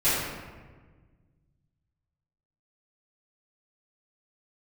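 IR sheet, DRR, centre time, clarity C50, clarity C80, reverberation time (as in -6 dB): -15.5 dB, 96 ms, -1.5 dB, 1.0 dB, 1.4 s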